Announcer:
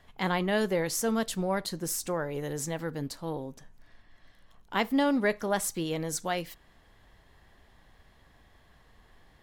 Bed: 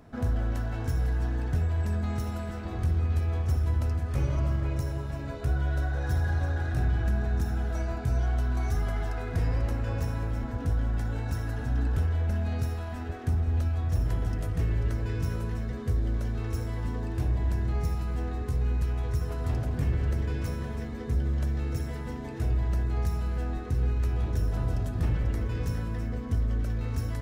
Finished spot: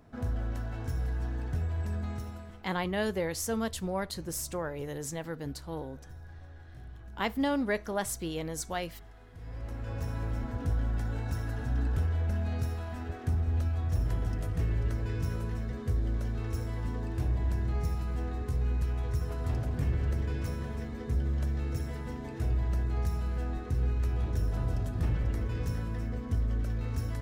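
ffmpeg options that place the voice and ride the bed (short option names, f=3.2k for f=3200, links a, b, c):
-filter_complex "[0:a]adelay=2450,volume=-3.5dB[a];[1:a]volume=13.5dB,afade=t=out:st=2.03:d=0.68:silence=0.158489,afade=t=in:st=9.38:d=0.91:silence=0.11885[b];[a][b]amix=inputs=2:normalize=0"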